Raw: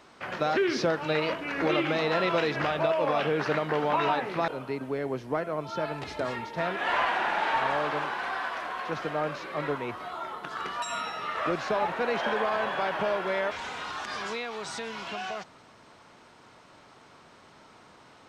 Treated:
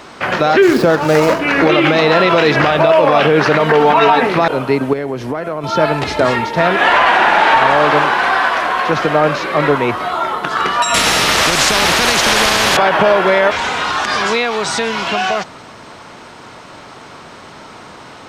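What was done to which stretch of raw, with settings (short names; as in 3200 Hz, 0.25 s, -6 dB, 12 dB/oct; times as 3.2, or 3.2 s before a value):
0.62–1.4 median filter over 15 samples
3.59–4.27 comb 4.4 ms, depth 77%
4.93–5.64 compressor 8:1, threshold -35 dBFS
10.94–12.77 spectral compressor 4:1
whole clip: maximiser +19.5 dB; gain -1 dB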